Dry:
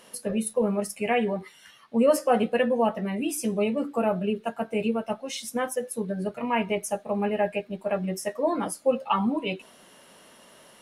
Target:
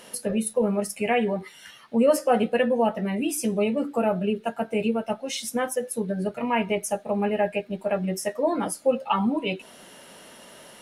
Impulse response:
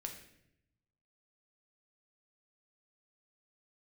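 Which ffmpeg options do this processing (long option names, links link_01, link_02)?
-filter_complex "[0:a]bandreject=frequency=1100:width=9.9,asplit=2[link_01][link_02];[link_02]acompressor=threshold=-37dB:ratio=6,volume=-0.5dB[link_03];[link_01][link_03]amix=inputs=2:normalize=0"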